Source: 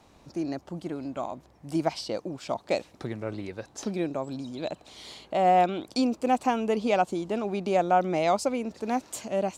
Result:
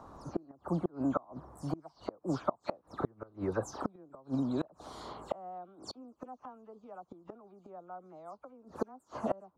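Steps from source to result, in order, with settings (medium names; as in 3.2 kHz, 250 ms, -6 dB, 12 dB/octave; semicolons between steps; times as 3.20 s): delay that grows with frequency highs early, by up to 134 ms; inverted gate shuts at -24 dBFS, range -31 dB; resonant high shelf 1.7 kHz -11.5 dB, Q 3; trim +4.5 dB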